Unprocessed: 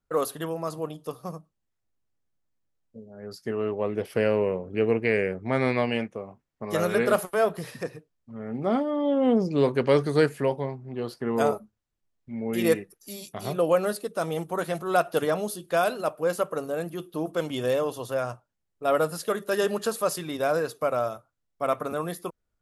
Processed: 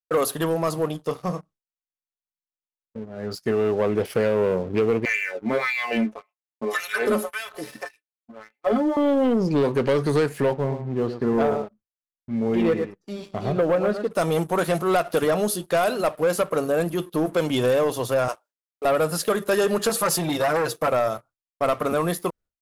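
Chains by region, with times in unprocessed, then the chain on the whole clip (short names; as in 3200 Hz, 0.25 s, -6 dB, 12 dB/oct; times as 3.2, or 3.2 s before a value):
1.03–3.35 LPF 7700 Hz + doubler 28 ms -10.5 dB
5.05–8.97 LFO high-pass sine 1.8 Hz 210–2700 Hz + metallic resonator 64 Hz, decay 0.23 s, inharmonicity 0.03
10.53–14.11 tape spacing loss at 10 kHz 30 dB + echo 0.109 s -11 dB
18.28–18.85 HPF 360 Hz 24 dB/oct + high shelf 2200 Hz +5.5 dB
19.89–20.88 comb 6 ms, depth 92% + core saturation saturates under 1800 Hz
whole clip: compressor, threshold -23 dBFS; sample leveller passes 2; expander -46 dBFS; gain +1.5 dB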